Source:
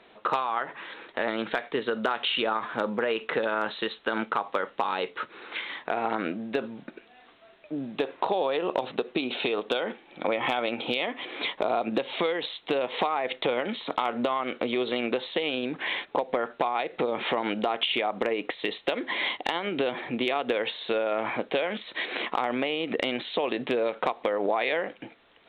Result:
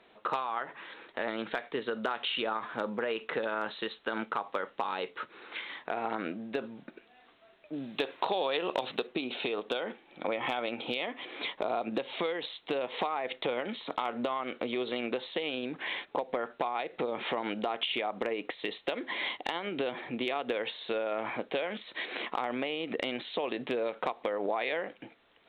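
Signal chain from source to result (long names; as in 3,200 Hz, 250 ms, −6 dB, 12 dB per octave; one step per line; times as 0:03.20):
0:07.73–0:09.07: high-shelf EQ 2,100 Hz +11.5 dB
level −5.5 dB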